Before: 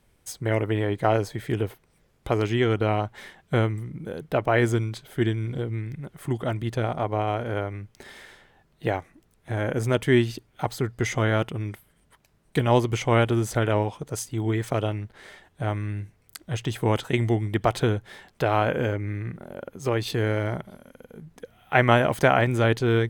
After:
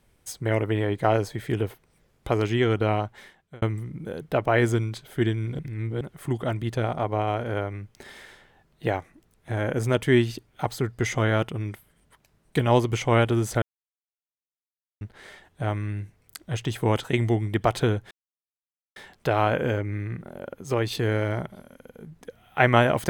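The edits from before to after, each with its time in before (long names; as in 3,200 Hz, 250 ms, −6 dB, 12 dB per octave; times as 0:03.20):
0:02.94–0:03.62: fade out
0:05.59–0:06.01: reverse
0:13.62–0:15.01: silence
0:18.11: splice in silence 0.85 s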